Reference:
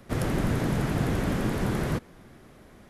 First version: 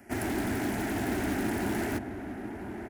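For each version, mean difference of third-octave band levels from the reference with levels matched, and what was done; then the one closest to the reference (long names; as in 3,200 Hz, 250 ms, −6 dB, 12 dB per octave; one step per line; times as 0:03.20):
6.5 dB: high-pass filter 90 Hz 12 dB per octave
phaser with its sweep stopped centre 760 Hz, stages 8
in parallel at −9 dB: wrap-around overflow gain 28.5 dB
on the sum: slap from a distant wall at 170 metres, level −7 dB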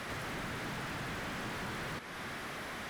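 11.5 dB: guitar amp tone stack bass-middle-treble 5-5-5
notch filter 7,000 Hz, Q 28
downward compressor, threshold −55 dBFS, peak gain reduction 17 dB
mid-hump overdrive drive 34 dB, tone 1,400 Hz, clips at −42 dBFS
level +12.5 dB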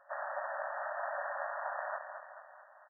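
23.5 dB: amplitude modulation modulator 210 Hz, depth 65%
in parallel at −8.5 dB: decimation without filtering 40×
on the sum: linear-phase brick-wall band-pass 550–1,900 Hz
repeating echo 219 ms, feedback 54%, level −8 dB
level +1 dB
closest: first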